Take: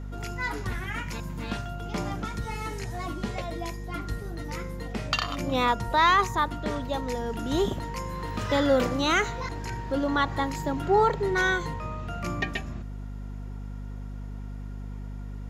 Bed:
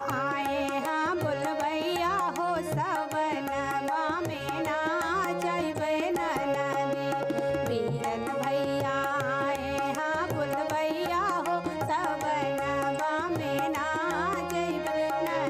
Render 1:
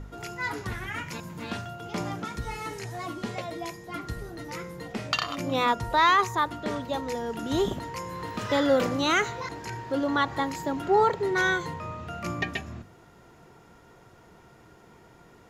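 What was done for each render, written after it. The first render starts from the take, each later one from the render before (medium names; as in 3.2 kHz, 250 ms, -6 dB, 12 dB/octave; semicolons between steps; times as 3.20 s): de-hum 50 Hz, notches 5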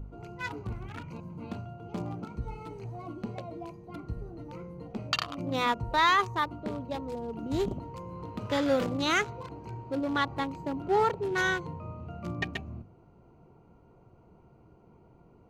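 local Wiener filter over 25 samples; peaking EQ 570 Hz -4 dB 2.9 oct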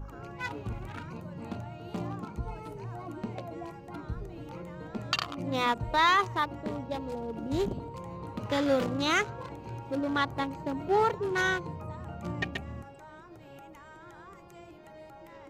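add bed -21.5 dB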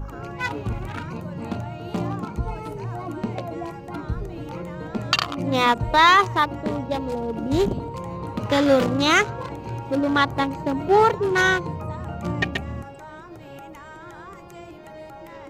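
trim +9 dB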